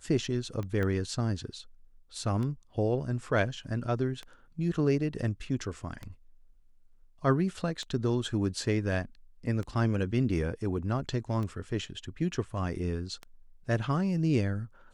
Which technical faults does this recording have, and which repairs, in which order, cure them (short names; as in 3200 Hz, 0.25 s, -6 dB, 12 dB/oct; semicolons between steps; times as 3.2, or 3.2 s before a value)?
tick 33 1/3 rpm -25 dBFS
0.83 pop -21 dBFS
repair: de-click